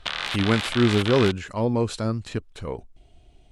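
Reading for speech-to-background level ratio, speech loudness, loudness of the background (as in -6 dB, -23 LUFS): 4.5 dB, -24.0 LUFS, -28.5 LUFS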